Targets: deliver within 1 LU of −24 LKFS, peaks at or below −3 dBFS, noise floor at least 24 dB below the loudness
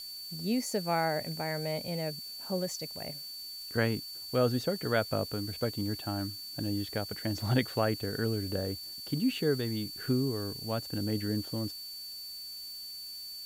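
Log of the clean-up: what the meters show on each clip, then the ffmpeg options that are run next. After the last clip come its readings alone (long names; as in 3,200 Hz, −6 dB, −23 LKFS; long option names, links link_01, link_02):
interfering tone 4,500 Hz; level of the tone −41 dBFS; background noise floor −43 dBFS; target noise floor −57 dBFS; integrated loudness −33.0 LKFS; sample peak −14.0 dBFS; target loudness −24.0 LKFS
→ -af "bandreject=frequency=4500:width=30"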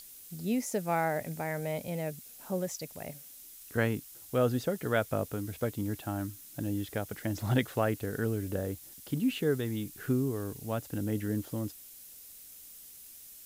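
interfering tone none found; background noise floor −51 dBFS; target noise floor −58 dBFS
→ -af "afftdn=noise_reduction=7:noise_floor=-51"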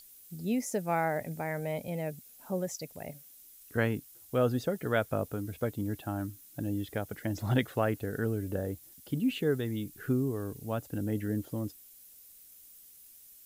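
background noise floor −55 dBFS; target noise floor −58 dBFS
→ -af "afftdn=noise_reduction=6:noise_floor=-55"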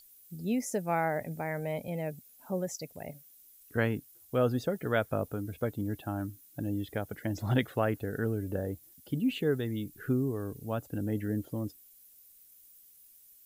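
background noise floor −58 dBFS; integrated loudness −33.5 LKFS; sample peak −14.0 dBFS; target loudness −24.0 LKFS
→ -af "volume=9.5dB"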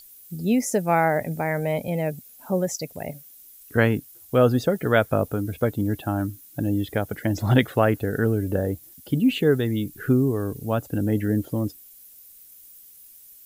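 integrated loudness −24.0 LKFS; sample peak −4.5 dBFS; background noise floor −49 dBFS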